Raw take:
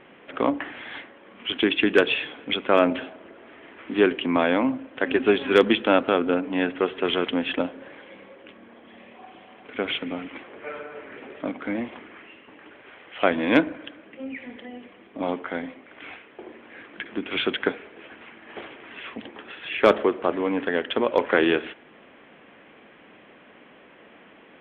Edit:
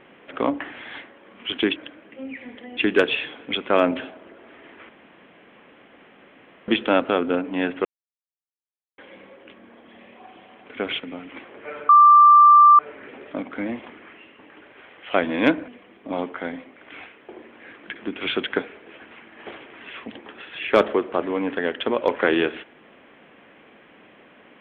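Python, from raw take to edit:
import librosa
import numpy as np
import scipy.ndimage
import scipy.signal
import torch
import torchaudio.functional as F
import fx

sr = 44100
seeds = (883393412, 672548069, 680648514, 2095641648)

y = fx.edit(x, sr, fx.room_tone_fill(start_s=3.88, length_s=1.79),
    fx.silence(start_s=6.84, length_s=1.13),
    fx.clip_gain(start_s=9.99, length_s=0.29, db=-4.0),
    fx.insert_tone(at_s=10.88, length_s=0.9, hz=1180.0, db=-7.5),
    fx.move(start_s=13.77, length_s=1.01, to_s=1.76), tone=tone)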